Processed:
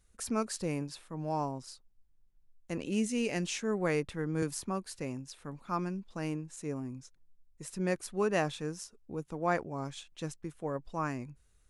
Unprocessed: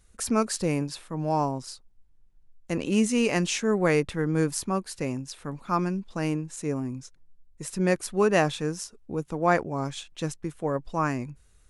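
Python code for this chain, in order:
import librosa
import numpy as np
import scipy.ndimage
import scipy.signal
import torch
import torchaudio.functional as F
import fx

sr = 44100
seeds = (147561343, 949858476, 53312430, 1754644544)

y = fx.peak_eq(x, sr, hz=1100.0, db=-9.5, octaves=0.6, at=(2.82, 3.43))
y = fx.band_squash(y, sr, depth_pct=40, at=(4.42, 4.97))
y = y * librosa.db_to_amplitude(-8.0)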